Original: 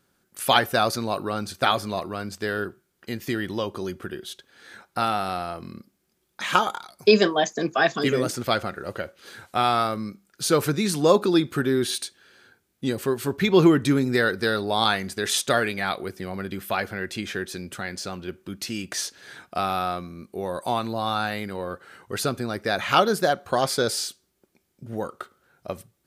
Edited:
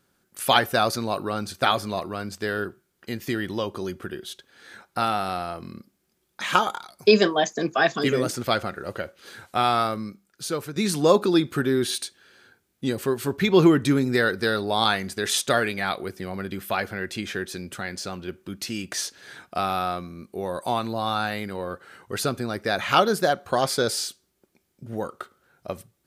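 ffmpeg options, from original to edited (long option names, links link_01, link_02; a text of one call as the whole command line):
ffmpeg -i in.wav -filter_complex "[0:a]asplit=2[link_01][link_02];[link_01]atrim=end=10.76,asetpts=PTS-STARTPTS,afade=type=out:start_time=9.88:duration=0.88:silence=0.211349[link_03];[link_02]atrim=start=10.76,asetpts=PTS-STARTPTS,afade=type=in:duration=0.004:curve=hsin:silence=0.211349[link_04];[link_03][link_04]concat=n=2:v=0:a=1" out.wav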